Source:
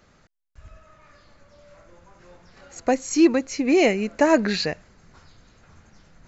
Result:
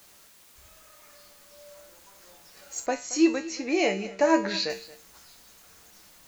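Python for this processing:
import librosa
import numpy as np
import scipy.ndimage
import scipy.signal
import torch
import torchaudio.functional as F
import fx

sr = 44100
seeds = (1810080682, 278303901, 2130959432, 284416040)

y = fx.bass_treble(x, sr, bass_db=-11, treble_db=13)
y = fx.comb_fb(y, sr, f0_hz=65.0, decay_s=0.34, harmonics='odd', damping=0.0, mix_pct=80)
y = fx.quant_dither(y, sr, seeds[0], bits=10, dither='triangular')
y = fx.air_absorb(y, sr, metres=140.0, at=(2.86, 4.7))
y = y + 10.0 ** (-18.5 / 20.0) * np.pad(y, (int(225 * sr / 1000.0), 0))[:len(y)]
y = y * librosa.db_to_amplitude(4.5)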